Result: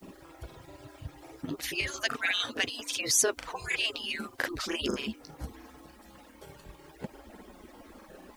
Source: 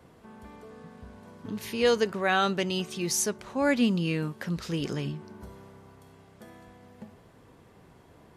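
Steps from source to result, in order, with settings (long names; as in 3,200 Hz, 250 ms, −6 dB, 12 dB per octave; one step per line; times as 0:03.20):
harmonic-percussive split with one part muted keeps percussive
in parallel at +2 dB: downward compressor, threshold −48 dBFS, peak gain reduction 21 dB
on the sum: granular cloud 100 ms, grains 20 per second, spray 32 ms, pitch spread up and down by 0 semitones
background noise white −73 dBFS
level +5 dB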